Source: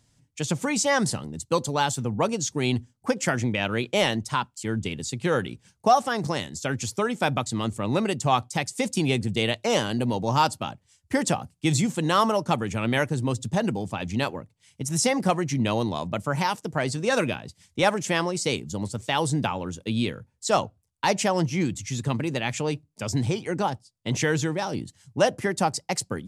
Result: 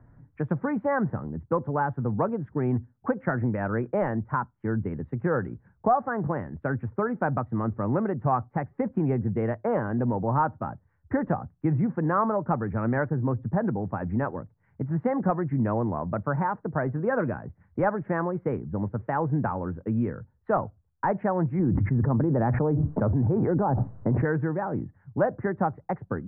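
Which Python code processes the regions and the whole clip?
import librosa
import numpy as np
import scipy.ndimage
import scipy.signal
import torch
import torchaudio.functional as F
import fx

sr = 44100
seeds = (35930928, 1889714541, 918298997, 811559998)

y = fx.chain(x, sr, fx.lowpass(hz=1000.0, slope=12),
    fx.env_flatten(amount_pct=100), at=(21.59, 24.25))
y = scipy.signal.sosfilt(scipy.signal.butter(8, 1700.0, 'lowpass', fs=sr, output='sos'), y)
y = fx.low_shelf(y, sr, hz=61.0, db=10.5)
y = fx.band_squash(y, sr, depth_pct=40)
y = F.gain(torch.from_numpy(y), -2.0).numpy()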